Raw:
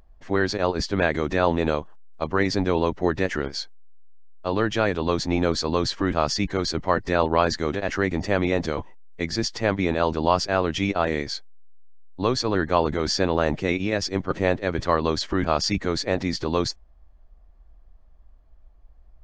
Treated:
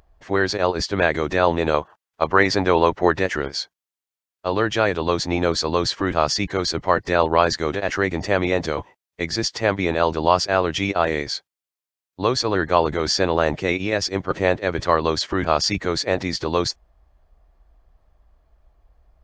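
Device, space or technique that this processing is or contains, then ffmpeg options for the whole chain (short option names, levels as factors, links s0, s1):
low shelf boost with a cut just above: -filter_complex "[0:a]lowshelf=f=100:g=7.5,equalizer=f=230:t=o:w=0.82:g=-5.5,asettb=1/sr,asplit=3[s0][s1][s2];[s0]atrim=end=1.744[s3];[s1]atrim=start=1.74:end=3.19,asetpts=PTS-STARTPTS,afade=t=in:d=0.004:c=qsin,afade=t=out:st=1.446:d=0.004:c=qsin,equalizer=f=1200:t=o:w=2.7:g=5.5[s4];[s2]atrim=start=3.186[s5];[s3][s4]acrossfade=d=0.004:c1=hsin:c2=qsin[s6];[s6][s5]acrossfade=d=0.004:c1=qsin:c2=hsin,highpass=f=190:p=1,volume=1.58"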